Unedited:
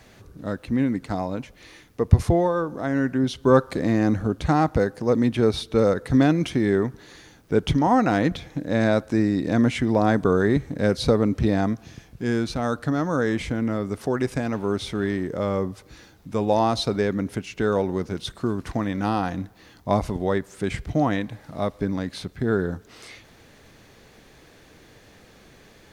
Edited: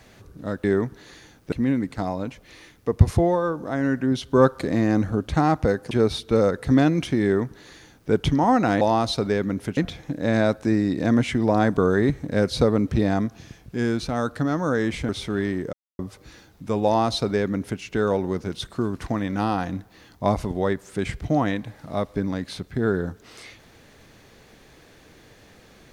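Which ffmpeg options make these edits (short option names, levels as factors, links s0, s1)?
-filter_complex "[0:a]asplit=9[s0][s1][s2][s3][s4][s5][s6][s7][s8];[s0]atrim=end=0.642[s9];[s1]atrim=start=6.658:end=7.542[s10];[s2]atrim=start=0.638:end=5.032[s11];[s3]atrim=start=5.338:end=8.242[s12];[s4]atrim=start=16.498:end=17.462[s13];[s5]atrim=start=8.238:end=13.562[s14];[s6]atrim=start=14.738:end=15.38,asetpts=PTS-STARTPTS,afade=t=out:st=0.638:d=0.004:c=hsin[s15];[s7]atrim=start=15.38:end=15.64,asetpts=PTS-STARTPTS,volume=0[s16];[s8]atrim=start=15.64,asetpts=PTS-STARTPTS,afade=t=in:d=0.004:c=hsin[s17];[s9][s10]acrossfade=d=0.004:c1=hsin:c2=hsin[s18];[s18][s11]acrossfade=d=0.004:c1=hsin:c2=hsin[s19];[s19][s12]acrossfade=d=0.004:c1=hsin:c2=hsin[s20];[s20][s13]acrossfade=d=0.004:c1=hsin:c2=hsin[s21];[s21][s14]acrossfade=d=0.004:c1=hsin:c2=hsin[s22];[s15][s16][s17]concat=n=3:v=0:a=1[s23];[s22][s23]acrossfade=d=0.004:c1=hsin:c2=hsin"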